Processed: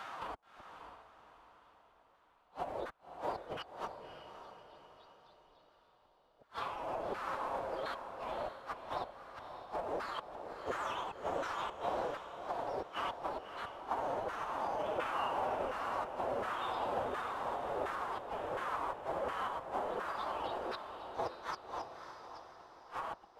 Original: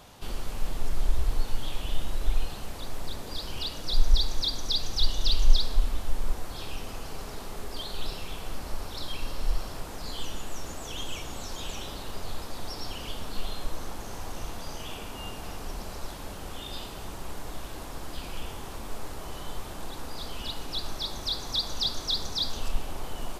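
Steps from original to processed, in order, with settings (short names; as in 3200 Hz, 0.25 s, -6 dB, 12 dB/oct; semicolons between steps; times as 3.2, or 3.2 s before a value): flipped gate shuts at -22 dBFS, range -40 dB; compressor 8:1, threshold -36 dBFS, peak gain reduction 10 dB; dynamic EQ 4800 Hz, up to -6 dB, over -59 dBFS, Q 1.1; LFO band-pass saw down 1.4 Hz 530–1500 Hz; formant-preserving pitch shift +4.5 st; on a send: diffused feedback echo 0.579 s, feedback 45%, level -8 dB; on the sum: gain +16 dB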